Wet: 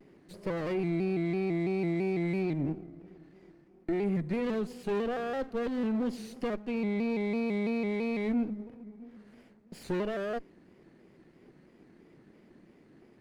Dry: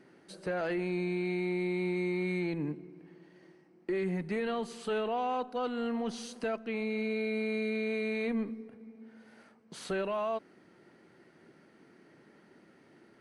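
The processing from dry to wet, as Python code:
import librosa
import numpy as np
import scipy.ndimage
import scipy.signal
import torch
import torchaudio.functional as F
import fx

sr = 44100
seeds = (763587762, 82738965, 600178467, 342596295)

y = fx.lower_of_two(x, sr, delay_ms=0.43)
y = fx.tilt_shelf(y, sr, db=4.5, hz=730.0)
y = fx.vibrato_shape(y, sr, shape='square', rate_hz=3.0, depth_cents=100.0)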